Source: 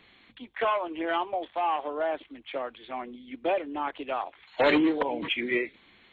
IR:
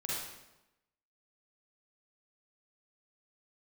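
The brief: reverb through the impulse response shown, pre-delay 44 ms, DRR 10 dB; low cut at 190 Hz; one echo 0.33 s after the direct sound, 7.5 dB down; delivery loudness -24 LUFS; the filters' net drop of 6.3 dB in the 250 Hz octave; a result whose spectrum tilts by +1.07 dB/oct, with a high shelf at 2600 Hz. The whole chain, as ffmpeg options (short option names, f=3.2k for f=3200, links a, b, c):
-filter_complex "[0:a]highpass=190,equalizer=f=250:t=o:g=-8.5,highshelf=f=2.6k:g=9,aecho=1:1:330:0.422,asplit=2[a][b];[1:a]atrim=start_sample=2205,adelay=44[c];[b][c]afir=irnorm=-1:irlink=0,volume=-13.5dB[d];[a][d]amix=inputs=2:normalize=0,volume=4dB"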